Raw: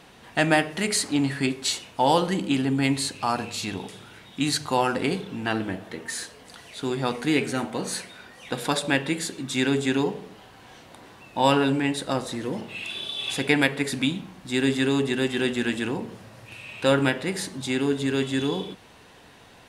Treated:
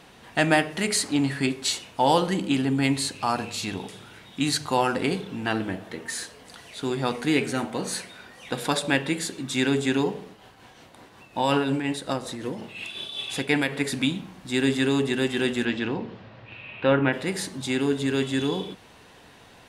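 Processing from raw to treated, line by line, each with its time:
0:10.24–0:13.75: shaped tremolo triangle 5.5 Hz, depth 50%
0:15.64–0:17.12: low-pass filter 5,600 Hz → 2,600 Hz 24 dB per octave

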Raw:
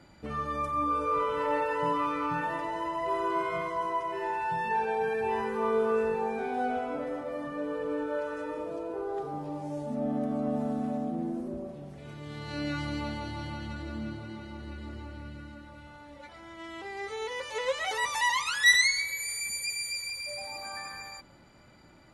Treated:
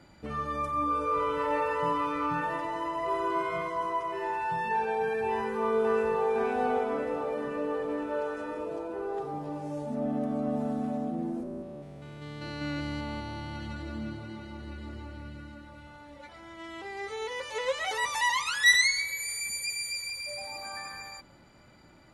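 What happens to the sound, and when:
0:00.68–0:01.20: delay throw 490 ms, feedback 65%, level −8 dB
0:05.33–0:06.32: delay throw 510 ms, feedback 70%, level −5 dB
0:11.43–0:13.56: spectrum averaged block by block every 200 ms

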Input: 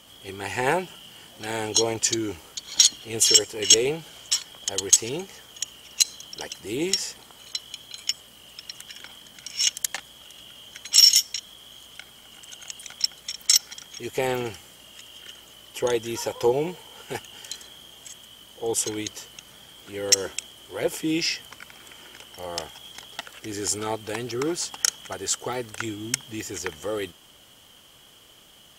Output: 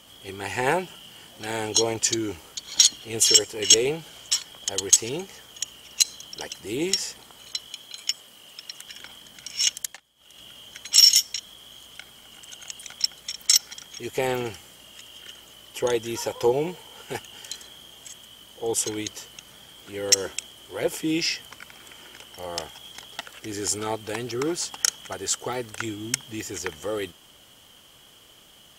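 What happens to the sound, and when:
0:07.67–0:08.88: high-pass filter 220 Hz 6 dB per octave
0:09.72–0:10.44: duck −19 dB, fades 0.28 s

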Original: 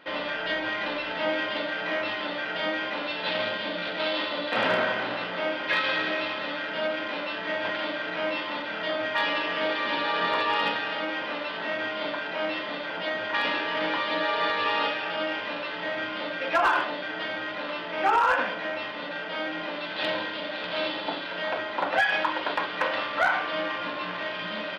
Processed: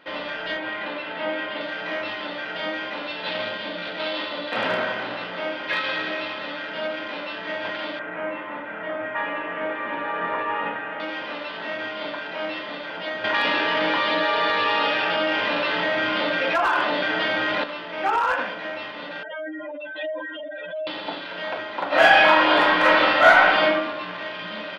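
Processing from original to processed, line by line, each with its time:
0:00.57–0:01.61: band-pass filter 120–3,500 Hz
0:07.99–0:11.00: low-pass filter 2,200 Hz 24 dB per octave
0:13.24–0:17.64: envelope flattener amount 70%
0:19.23–0:20.87: expanding power law on the bin magnitudes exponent 3.5
0:21.87–0:23.65: thrown reverb, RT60 0.86 s, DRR −11 dB

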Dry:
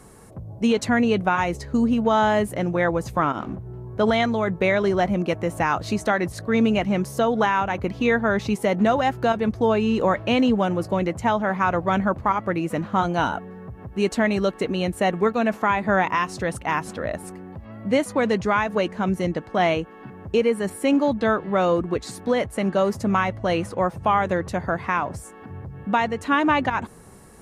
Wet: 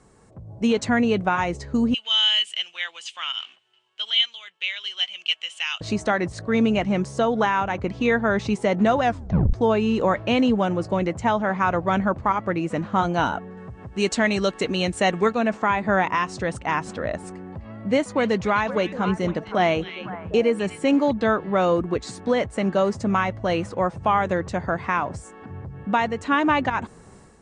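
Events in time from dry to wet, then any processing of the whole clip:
0:01.94–0:05.81: high-pass with resonance 3,000 Hz, resonance Q 13
0:09.03: tape stop 0.50 s
0:13.57–0:15.35: high-shelf EQ 2,200 Hz +9.5 dB
0:17.35–0:21.11: echo through a band-pass that steps 254 ms, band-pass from 3,100 Hz, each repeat −1.4 octaves, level −6 dB
whole clip: Butterworth low-pass 8,700 Hz 48 dB per octave; automatic gain control gain up to 10 dB; level −7.5 dB

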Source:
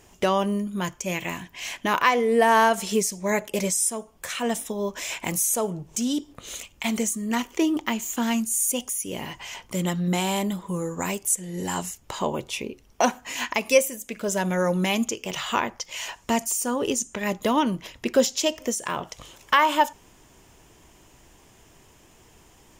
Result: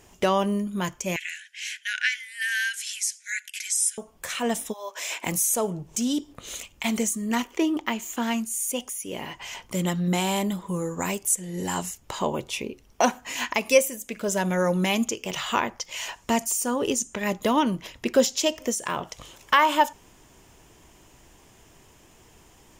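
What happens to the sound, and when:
0:01.16–0:03.98: linear-phase brick-wall band-pass 1,400–12,000 Hz
0:04.72–0:05.25: high-pass filter 890 Hz → 240 Hz 24 dB per octave
0:07.44–0:09.42: bass and treble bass −5 dB, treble −5 dB

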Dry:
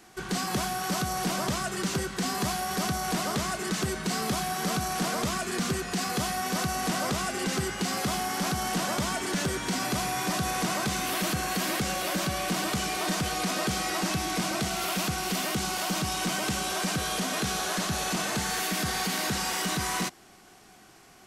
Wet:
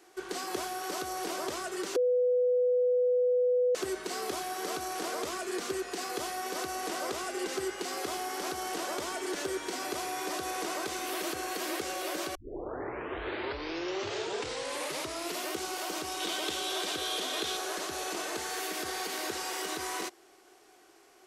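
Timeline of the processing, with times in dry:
0:01.96–0:03.75: beep over 496 Hz −20.5 dBFS
0:12.35: tape start 3.15 s
0:16.20–0:17.57: parametric band 3,500 Hz +11 dB 0.47 octaves
whole clip: low shelf with overshoot 260 Hz −11 dB, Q 3; level −6.5 dB

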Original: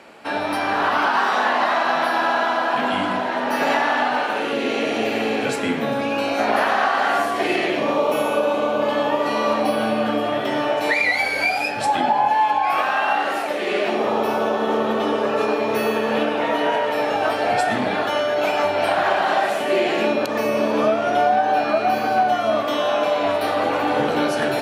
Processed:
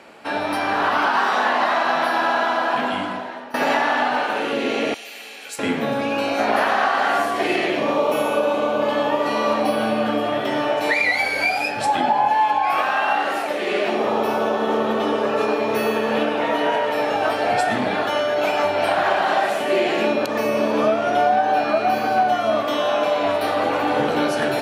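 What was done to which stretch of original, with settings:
0:02.73–0:03.54: fade out, to −19 dB
0:04.94–0:05.59: first difference

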